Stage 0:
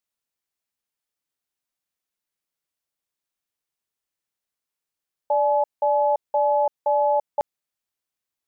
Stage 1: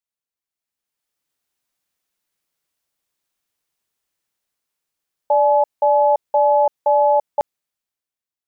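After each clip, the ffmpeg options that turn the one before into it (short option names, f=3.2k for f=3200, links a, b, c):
-af "dynaudnorm=f=110:g=17:m=14dB,volume=-6dB"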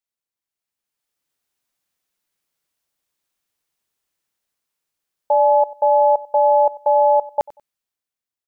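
-af "aecho=1:1:94|188:0.0944|0.0255"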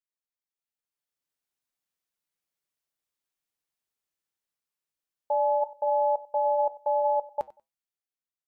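-af "flanger=delay=6:depth=1.2:regen=-82:speed=1.4:shape=triangular,volume=-6dB"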